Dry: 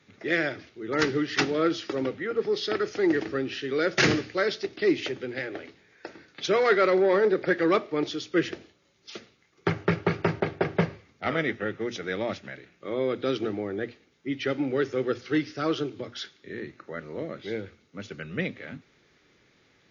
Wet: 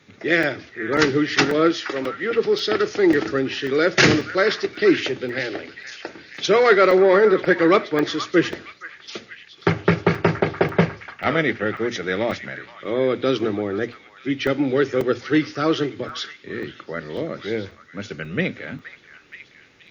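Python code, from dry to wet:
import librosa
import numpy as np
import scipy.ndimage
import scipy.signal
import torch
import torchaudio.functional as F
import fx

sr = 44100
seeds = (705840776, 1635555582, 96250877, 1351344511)

y = fx.low_shelf(x, sr, hz=360.0, db=-10.0, at=(1.71, 2.23))
y = fx.echo_stepped(y, sr, ms=472, hz=1400.0, octaves=0.7, feedback_pct=70, wet_db=-9.5)
y = fx.buffer_crackle(y, sr, first_s=0.43, period_s=0.54, block=128, kind='zero')
y = F.gain(torch.from_numpy(y), 7.0).numpy()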